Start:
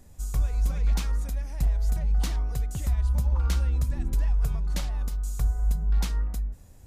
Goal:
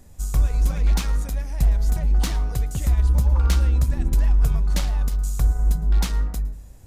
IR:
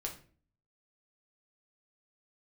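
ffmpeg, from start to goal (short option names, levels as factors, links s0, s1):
-filter_complex "[0:a]aeval=exprs='0.141*(cos(1*acos(clip(val(0)/0.141,-1,1)))-cos(1*PI/2))+0.00501*(cos(7*acos(clip(val(0)/0.141,-1,1)))-cos(7*PI/2))':c=same,asplit=2[s0][s1];[1:a]atrim=start_sample=2205,asetrate=40572,aresample=44100,adelay=110[s2];[s1][s2]afir=irnorm=-1:irlink=0,volume=0.1[s3];[s0][s3]amix=inputs=2:normalize=0,volume=2"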